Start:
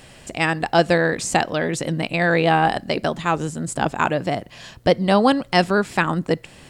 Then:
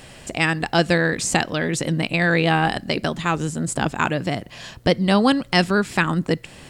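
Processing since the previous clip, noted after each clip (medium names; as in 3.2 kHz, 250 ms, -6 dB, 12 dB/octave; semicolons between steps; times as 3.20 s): dynamic bell 680 Hz, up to -7 dB, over -30 dBFS, Q 0.81; trim +2.5 dB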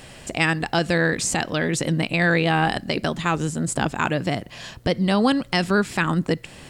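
peak limiter -8.5 dBFS, peak gain reduction 6.5 dB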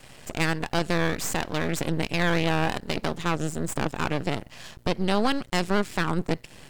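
half-wave rectifier; trim -1.5 dB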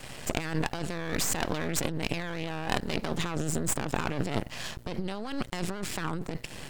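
compressor with a negative ratio -31 dBFS, ratio -1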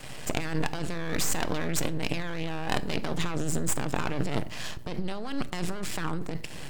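simulated room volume 750 m³, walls furnished, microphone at 0.47 m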